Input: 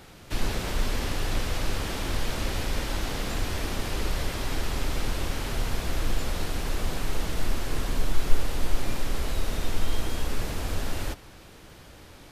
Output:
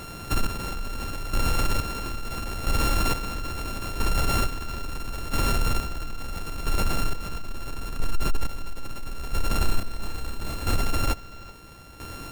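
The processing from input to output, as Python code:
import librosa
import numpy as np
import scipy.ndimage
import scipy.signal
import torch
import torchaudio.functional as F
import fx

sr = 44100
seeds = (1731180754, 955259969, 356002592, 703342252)

p1 = np.r_[np.sort(x[:len(x) // 32 * 32].reshape(-1, 32), axis=1).ravel(), x[len(x) // 32 * 32:]]
p2 = fx.over_compress(p1, sr, threshold_db=-30.0, ratio=-1.0)
p3 = p1 + F.gain(torch.from_numpy(p2), -1.0).numpy()
p4 = 10.0 ** (-16.0 / 20.0) * np.tanh(p3 / 10.0 ** (-16.0 / 20.0))
p5 = fx.chopper(p4, sr, hz=0.75, depth_pct=65, duty_pct=35)
p6 = fx.doubler(p5, sr, ms=30.0, db=-4.0, at=(9.58, 10.76))
p7 = p6 + fx.echo_single(p6, sr, ms=381, db=-20.0, dry=0)
y = F.gain(torch.from_numpy(p7), 2.0).numpy()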